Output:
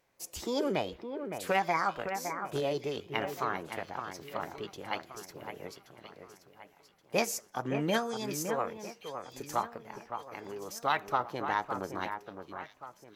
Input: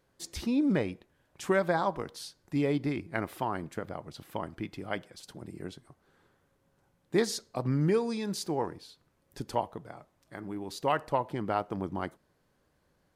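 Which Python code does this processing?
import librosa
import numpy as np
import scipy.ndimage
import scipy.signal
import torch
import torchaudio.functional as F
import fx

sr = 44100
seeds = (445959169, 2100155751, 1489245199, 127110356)

p1 = fx.low_shelf(x, sr, hz=250.0, db=-9.0)
p2 = fx.notch(p1, sr, hz=6600.0, q=13.0)
p3 = fx.formant_shift(p2, sr, semitones=5)
y = p3 + fx.echo_alternate(p3, sr, ms=563, hz=2500.0, feedback_pct=59, wet_db=-7.5, dry=0)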